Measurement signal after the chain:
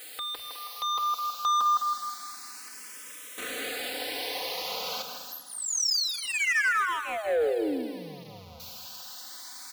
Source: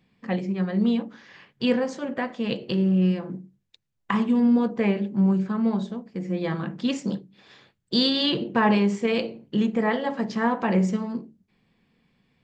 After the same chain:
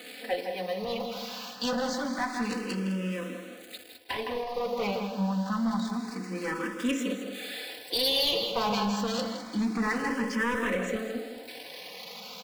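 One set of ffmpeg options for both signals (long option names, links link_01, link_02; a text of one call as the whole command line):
ffmpeg -i in.wav -filter_complex "[0:a]aeval=exprs='val(0)+0.5*0.0168*sgn(val(0))':channel_layout=same,highpass=360,equalizer=frequency=4400:width_type=o:width=0.47:gain=6,acrossover=split=4900[link_01][link_02];[link_02]acompressor=threshold=-37dB:ratio=4:attack=1:release=60[link_03];[link_01][link_03]amix=inputs=2:normalize=0,aecho=1:1:4:0.79,asplit=2[link_04][link_05];[link_05]adelay=162,lowpass=frequency=2800:poles=1,volume=-7dB,asplit=2[link_06][link_07];[link_07]adelay=162,lowpass=frequency=2800:poles=1,volume=0.38,asplit=2[link_08][link_09];[link_09]adelay=162,lowpass=frequency=2800:poles=1,volume=0.38,asplit=2[link_10][link_11];[link_11]adelay=162,lowpass=frequency=2800:poles=1,volume=0.38[link_12];[link_06][link_08][link_10][link_12]amix=inputs=4:normalize=0[link_13];[link_04][link_13]amix=inputs=2:normalize=0,asoftclip=type=hard:threshold=-21.5dB,asplit=2[link_14][link_15];[link_15]aecho=0:1:207|414|621|828:0.251|0.103|0.0422|0.0173[link_16];[link_14][link_16]amix=inputs=2:normalize=0,asplit=2[link_17][link_18];[link_18]afreqshift=0.27[link_19];[link_17][link_19]amix=inputs=2:normalize=1" out.wav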